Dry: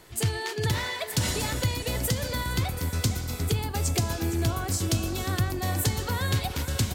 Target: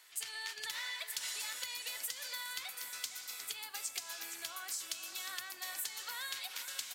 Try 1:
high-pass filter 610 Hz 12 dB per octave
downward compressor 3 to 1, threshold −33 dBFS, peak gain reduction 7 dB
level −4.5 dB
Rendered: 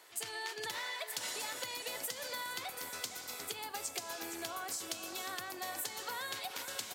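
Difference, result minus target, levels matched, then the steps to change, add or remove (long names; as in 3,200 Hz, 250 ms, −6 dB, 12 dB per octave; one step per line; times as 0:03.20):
500 Hz band +13.5 dB
change: high-pass filter 1,600 Hz 12 dB per octave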